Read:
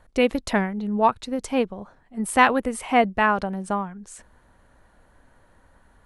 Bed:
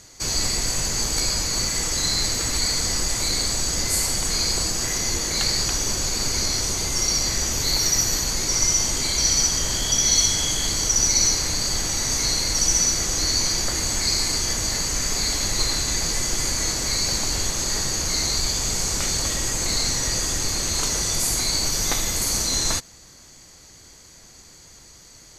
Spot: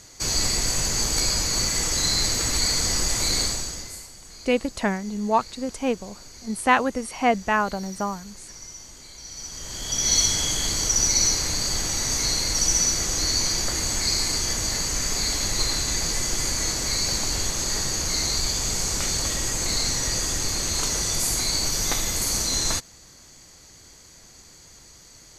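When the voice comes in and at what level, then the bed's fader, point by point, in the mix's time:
4.30 s, -2.0 dB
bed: 3.43 s 0 dB
4.11 s -21 dB
9.25 s -21 dB
10.13 s -1.5 dB

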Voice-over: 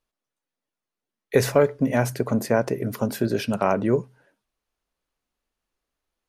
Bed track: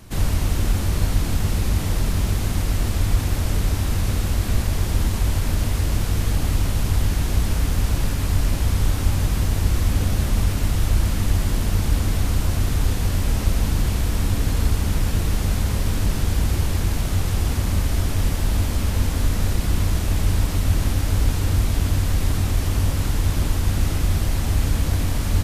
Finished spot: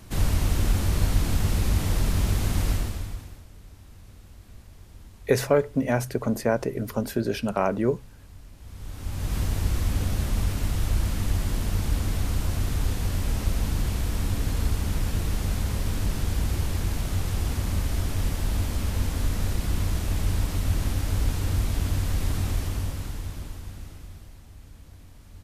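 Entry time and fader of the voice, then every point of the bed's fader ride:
3.95 s, -2.5 dB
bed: 2.71 s -2.5 dB
3.48 s -26.5 dB
8.55 s -26.5 dB
9.36 s -5.5 dB
22.52 s -5.5 dB
24.49 s -27 dB

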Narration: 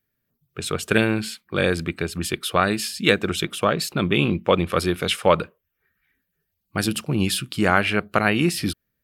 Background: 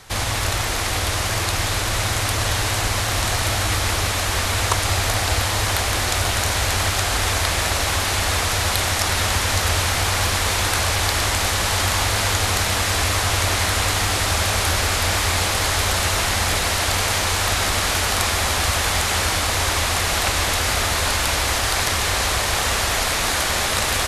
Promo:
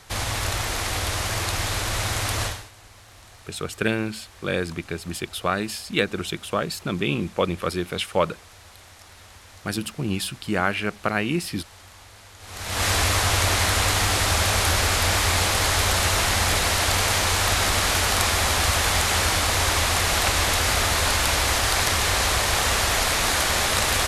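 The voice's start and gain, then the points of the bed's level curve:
2.90 s, -4.5 dB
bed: 2.45 s -4 dB
2.71 s -27 dB
12.36 s -27 dB
12.84 s -1 dB

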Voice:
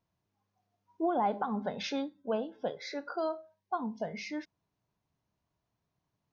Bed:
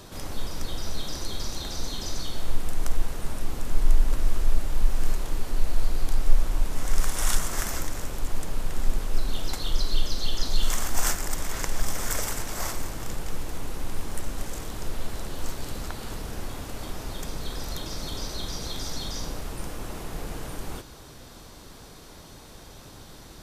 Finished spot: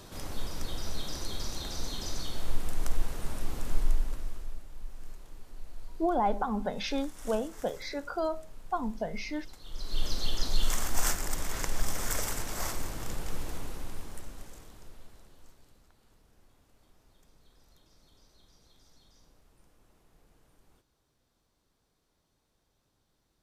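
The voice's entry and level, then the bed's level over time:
5.00 s, +2.0 dB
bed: 3.73 s -4 dB
4.66 s -20 dB
9.62 s -20 dB
10.06 s -3.5 dB
13.5 s -3.5 dB
15.87 s -29.5 dB

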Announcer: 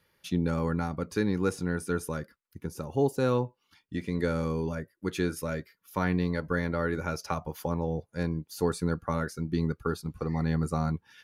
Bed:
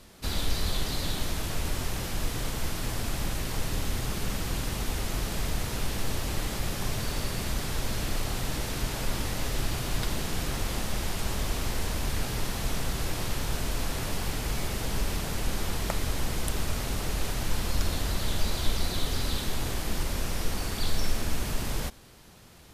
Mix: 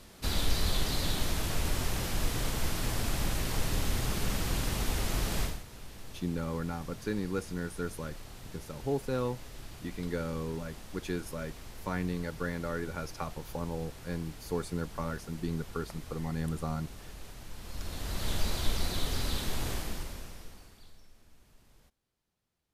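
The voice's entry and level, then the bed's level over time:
5.90 s, -6.0 dB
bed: 5.43 s -0.5 dB
5.64 s -16.5 dB
17.55 s -16.5 dB
18.3 s -3 dB
19.74 s -3 dB
21.07 s -31.5 dB

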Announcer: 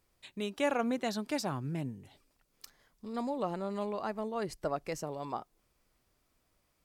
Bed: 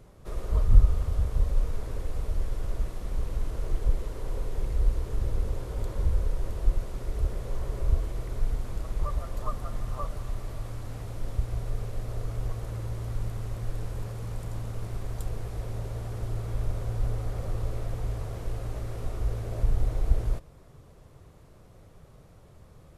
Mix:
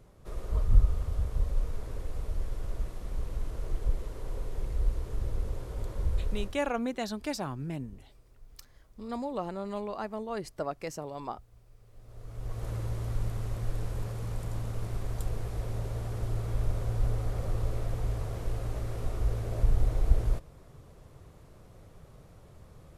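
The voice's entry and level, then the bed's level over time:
5.95 s, 0.0 dB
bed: 6.43 s -4 dB
6.69 s -26.5 dB
11.76 s -26.5 dB
12.66 s 0 dB

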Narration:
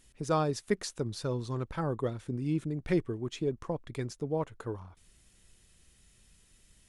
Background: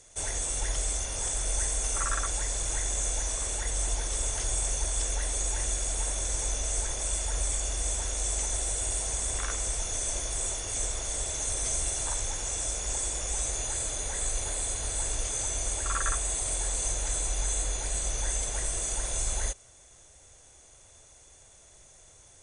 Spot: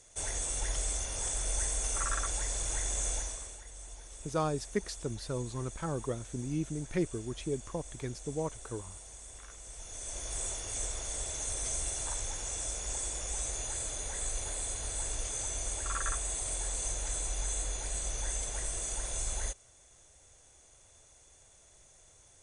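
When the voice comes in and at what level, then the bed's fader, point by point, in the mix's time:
4.05 s, -3.0 dB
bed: 3.15 s -3.5 dB
3.64 s -18 dB
9.61 s -18 dB
10.35 s -5 dB

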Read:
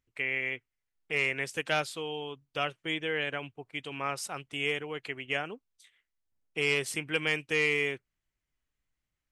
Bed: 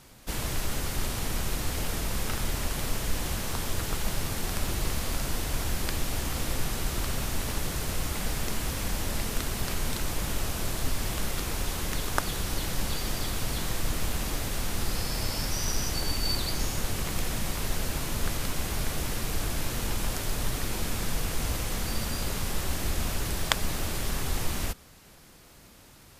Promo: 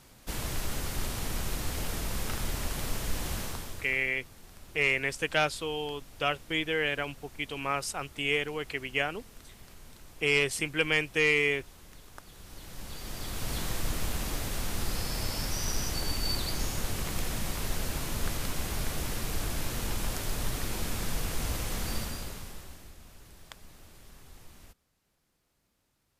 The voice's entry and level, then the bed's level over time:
3.65 s, +2.5 dB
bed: 3.42 s -3 dB
4.13 s -21 dB
12.24 s -21 dB
13.54 s -2.5 dB
21.96 s -2.5 dB
22.98 s -22.5 dB

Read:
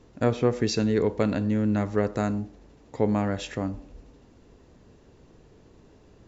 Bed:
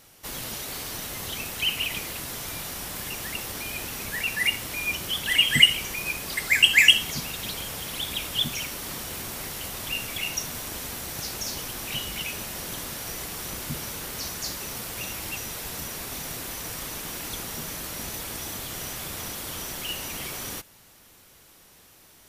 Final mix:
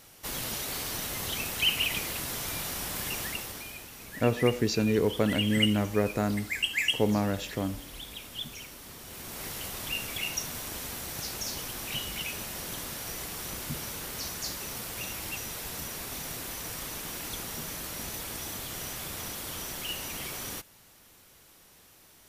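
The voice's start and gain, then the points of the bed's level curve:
4.00 s, -2.0 dB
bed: 3.2 s 0 dB
3.88 s -12 dB
8.98 s -12 dB
9.47 s -3 dB

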